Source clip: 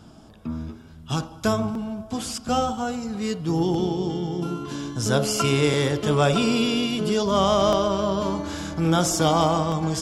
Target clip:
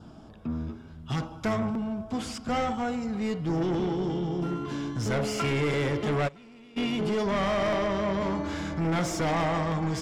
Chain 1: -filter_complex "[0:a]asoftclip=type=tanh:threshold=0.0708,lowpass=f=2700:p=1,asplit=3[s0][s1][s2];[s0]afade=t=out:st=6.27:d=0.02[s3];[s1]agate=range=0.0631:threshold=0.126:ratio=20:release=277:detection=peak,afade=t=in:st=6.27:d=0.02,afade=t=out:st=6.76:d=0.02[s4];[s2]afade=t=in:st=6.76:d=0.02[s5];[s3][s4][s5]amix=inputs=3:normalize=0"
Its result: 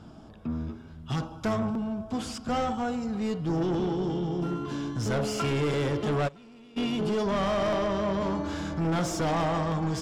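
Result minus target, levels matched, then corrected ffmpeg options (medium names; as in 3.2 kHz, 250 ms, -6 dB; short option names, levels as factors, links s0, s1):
2 kHz band -3.0 dB
-filter_complex "[0:a]asoftclip=type=tanh:threshold=0.0708,lowpass=f=2700:p=1,adynamicequalizer=threshold=0.002:dfrequency=2100:dqfactor=3.7:tfrequency=2100:tqfactor=3.7:attack=5:release=100:ratio=0.417:range=3.5:mode=boostabove:tftype=bell,asplit=3[s0][s1][s2];[s0]afade=t=out:st=6.27:d=0.02[s3];[s1]agate=range=0.0631:threshold=0.126:ratio=20:release=277:detection=peak,afade=t=in:st=6.27:d=0.02,afade=t=out:st=6.76:d=0.02[s4];[s2]afade=t=in:st=6.76:d=0.02[s5];[s3][s4][s5]amix=inputs=3:normalize=0"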